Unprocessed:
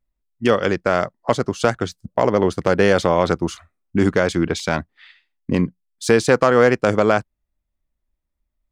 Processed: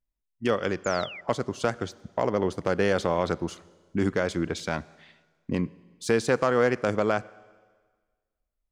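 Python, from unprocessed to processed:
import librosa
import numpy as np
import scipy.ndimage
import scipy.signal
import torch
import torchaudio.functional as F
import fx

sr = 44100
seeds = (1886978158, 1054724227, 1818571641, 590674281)

y = fx.rev_schroeder(x, sr, rt60_s=1.5, comb_ms=31, drr_db=20.0)
y = fx.spec_paint(y, sr, seeds[0], shape='fall', start_s=0.84, length_s=0.37, low_hz=1900.0, high_hz=7400.0, level_db=-32.0)
y = y * 10.0 ** (-8.5 / 20.0)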